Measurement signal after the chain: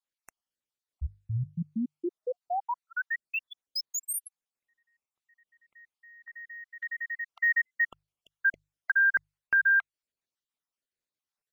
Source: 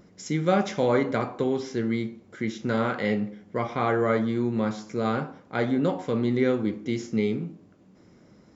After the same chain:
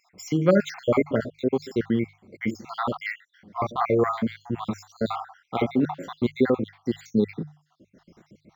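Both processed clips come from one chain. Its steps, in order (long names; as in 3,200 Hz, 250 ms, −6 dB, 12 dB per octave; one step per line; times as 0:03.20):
time-frequency cells dropped at random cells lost 63%
mains-hum notches 50/100/150 Hz
linearly interpolated sample-rate reduction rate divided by 2×
level +4.5 dB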